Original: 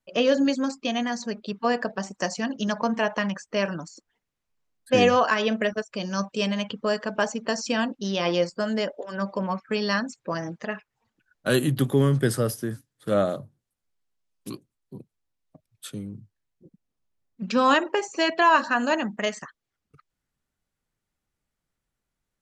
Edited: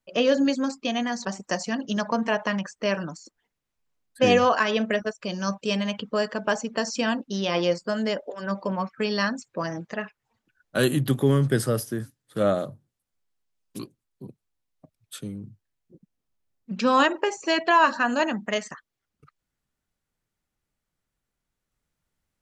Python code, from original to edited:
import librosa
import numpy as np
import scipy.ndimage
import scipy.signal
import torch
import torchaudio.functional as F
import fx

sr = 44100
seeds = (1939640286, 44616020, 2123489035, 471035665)

y = fx.edit(x, sr, fx.cut(start_s=1.25, length_s=0.71), tone=tone)